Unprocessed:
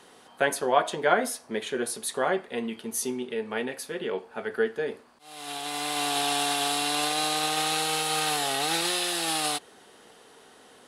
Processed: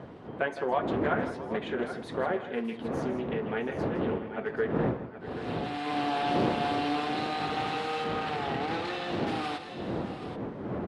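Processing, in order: bin magnitudes rounded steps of 15 dB; wind noise 390 Hz -31 dBFS; compressor 2:1, threshold -28 dBFS, peak gain reduction 8 dB; 5.86–7 bell 390 Hz +5 dB 2.3 oct; tapped delay 0.162/0.668/0.779 s -12.5/-17.5/-11.5 dB; 8.04–9.27 backlash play -29.5 dBFS; BPF 120–2400 Hz; Doppler distortion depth 0.29 ms

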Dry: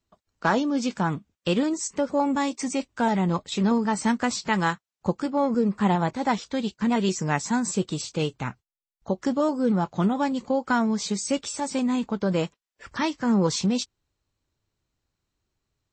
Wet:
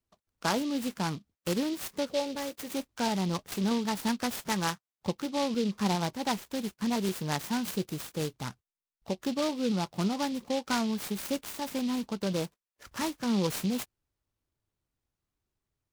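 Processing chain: 2.1–2.71 graphic EQ 250/500/1000 Hz -9/+8/-10 dB; noise-modulated delay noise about 3600 Hz, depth 0.08 ms; gain -6.5 dB

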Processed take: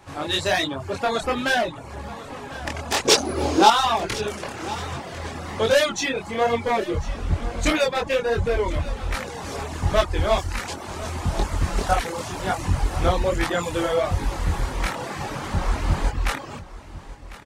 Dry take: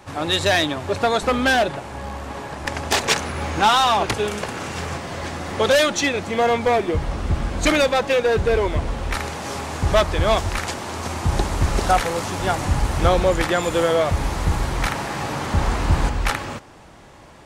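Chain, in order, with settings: chorus voices 2, 1.3 Hz, delay 24 ms, depth 3 ms; reverb removal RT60 0.55 s; 3.05–3.7 EQ curve 200 Hz 0 dB, 300 Hz +15 dB, 1900 Hz -2 dB, 4900 Hz +11 dB, 7300 Hz +7 dB; on a send: echo 1.049 s -17 dB

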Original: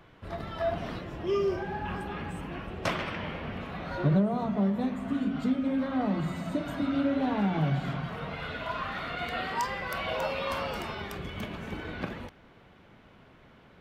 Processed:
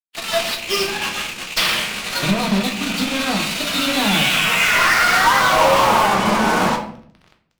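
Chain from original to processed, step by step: rattling part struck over -37 dBFS, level -33 dBFS; LPF 6600 Hz 24 dB/oct; bell 210 Hz +12.5 dB 0.57 oct; notches 60/120/180/240/300/360/420 Hz; band-pass sweep 4700 Hz -> 920 Hz, 7.12–10.3; fuzz box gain 53 dB, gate -55 dBFS; time stretch by phase-locked vocoder 0.55×; reverb RT60 0.60 s, pre-delay 6 ms, DRR 3 dB

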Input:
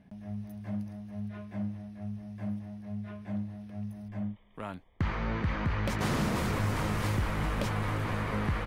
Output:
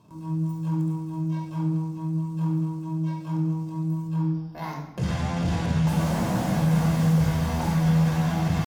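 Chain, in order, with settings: graphic EQ 125/250/500/1000/2000/4000/8000 Hz +10/-11/+10/-5/-5/+7/+11 dB; pitch shift +7.5 st; soft clip -25.5 dBFS, distortion -12 dB; HPF 48 Hz; reverb RT60 1.1 s, pre-delay 18 ms, DRR 0 dB; slew limiter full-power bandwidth 64 Hz

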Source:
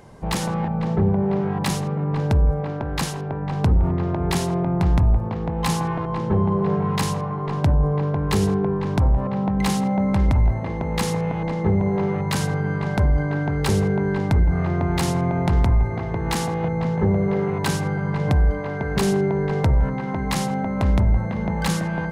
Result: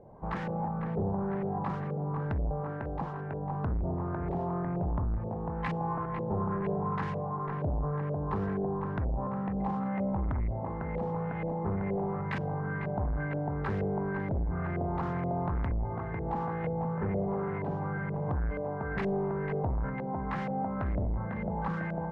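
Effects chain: soft clip -18.5 dBFS, distortion -12 dB; LFO low-pass saw up 2.1 Hz 550–2200 Hz; gain -9 dB

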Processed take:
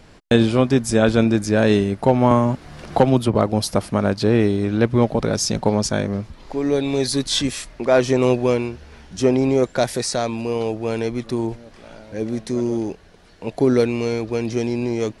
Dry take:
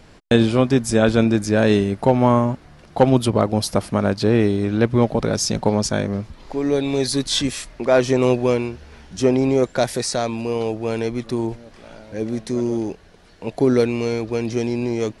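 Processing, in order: 2.31–3.35 three-band squash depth 70%

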